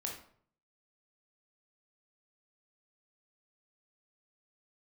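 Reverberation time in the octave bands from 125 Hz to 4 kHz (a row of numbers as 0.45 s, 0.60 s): 0.80 s, 0.65 s, 0.60 s, 0.55 s, 0.45 s, 0.40 s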